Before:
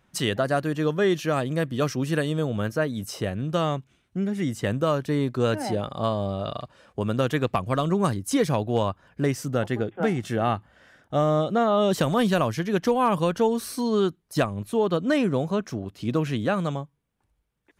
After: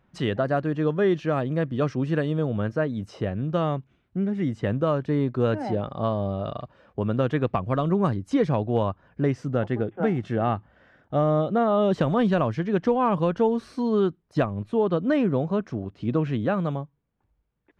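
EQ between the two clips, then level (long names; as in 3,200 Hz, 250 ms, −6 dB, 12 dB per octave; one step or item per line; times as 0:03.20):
head-to-tape spacing loss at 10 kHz 28 dB
+1.5 dB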